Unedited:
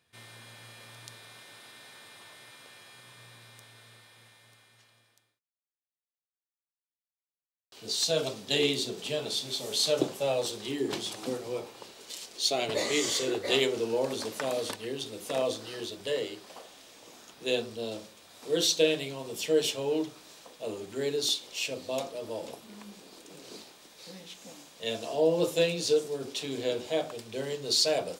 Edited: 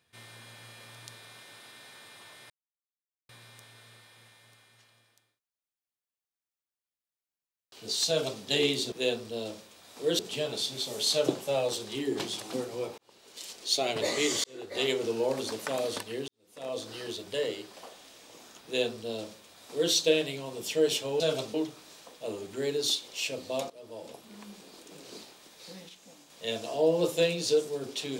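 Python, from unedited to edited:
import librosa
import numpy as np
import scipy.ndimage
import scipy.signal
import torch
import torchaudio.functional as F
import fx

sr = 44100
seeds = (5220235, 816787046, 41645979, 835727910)

y = fx.edit(x, sr, fx.silence(start_s=2.5, length_s=0.79),
    fx.duplicate(start_s=8.08, length_s=0.34, to_s=19.93),
    fx.fade_in_span(start_s=11.71, length_s=0.54),
    fx.fade_in_span(start_s=13.17, length_s=0.59),
    fx.fade_in_span(start_s=15.01, length_s=0.63, curve='qua'),
    fx.duplicate(start_s=17.38, length_s=1.27, to_s=8.92),
    fx.fade_in_from(start_s=22.09, length_s=0.75, floor_db=-14.5),
    fx.clip_gain(start_s=24.28, length_s=0.41, db=-6.0), tone=tone)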